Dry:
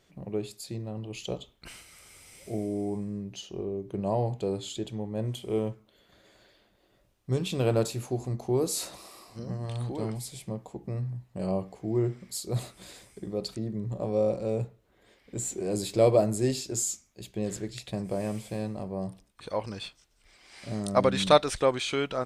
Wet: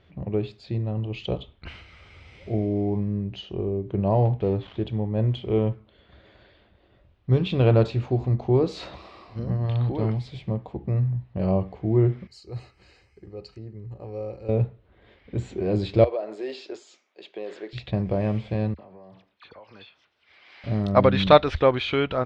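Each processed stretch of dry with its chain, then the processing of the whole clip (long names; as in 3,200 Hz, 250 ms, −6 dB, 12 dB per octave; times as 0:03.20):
0:04.25–0:04.86: gap after every zero crossing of 0.097 ms + low-pass filter 3,000 Hz 6 dB per octave
0:12.27–0:14.49: Butterworth band-reject 3,500 Hz, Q 3.8 + first-order pre-emphasis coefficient 0.8 + comb filter 2.4 ms, depth 43%
0:16.04–0:17.73: high-pass filter 380 Hz 24 dB per octave + downward compressor 2.5 to 1, threshold −35 dBFS
0:18.74–0:20.64: meter weighting curve A + downward compressor 8 to 1, threshold −48 dBFS + all-pass dispersion lows, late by 46 ms, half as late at 2,000 Hz
whole clip: low-pass filter 3,600 Hz 24 dB per octave; parametric band 76 Hz +14 dB 0.91 octaves; level +5 dB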